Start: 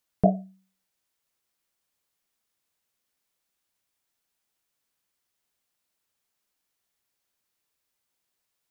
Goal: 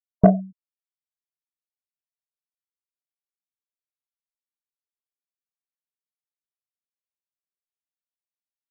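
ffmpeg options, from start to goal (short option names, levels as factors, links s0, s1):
-af "afftfilt=real='re*gte(hypot(re,im),0.0224)':imag='im*gte(hypot(re,im),0.0224)':win_size=1024:overlap=0.75,equalizer=f=900:t=o:w=0.23:g=-13,acontrast=78,volume=1.19"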